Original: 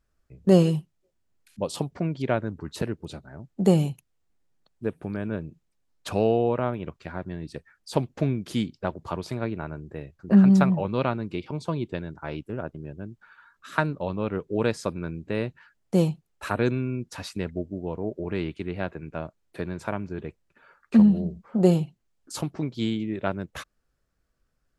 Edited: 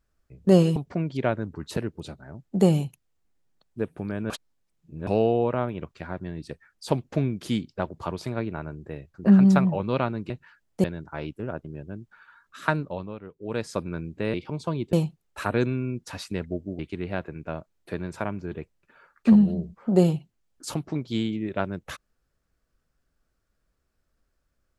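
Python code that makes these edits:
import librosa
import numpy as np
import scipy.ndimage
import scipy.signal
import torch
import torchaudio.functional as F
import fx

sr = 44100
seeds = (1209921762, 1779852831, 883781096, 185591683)

y = fx.edit(x, sr, fx.cut(start_s=0.76, length_s=1.05),
    fx.reverse_span(start_s=5.35, length_s=0.77),
    fx.swap(start_s=11.35, length_s=0.59, other_s=15.44, other_length_s=0.54),
    fx.fade_down_up(start_s=13.89, length_s=1.0, db=-13.0, fade_s=0.4),
    fx.cut(start_s=17.84, length_s=0.62), tone=tone)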